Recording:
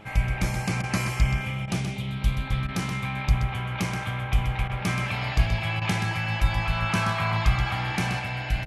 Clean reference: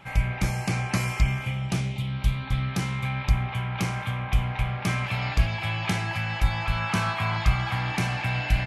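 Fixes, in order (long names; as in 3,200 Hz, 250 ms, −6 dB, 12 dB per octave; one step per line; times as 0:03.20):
hum removal 105.2 Hz, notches 7
repair the gap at 0:00.82/0:01.66/0:02.67/0:04.68/0:05.80, 14 ms
echo removal 127 ms −7.5 dB
level correction +3.5 dB, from 0:08.19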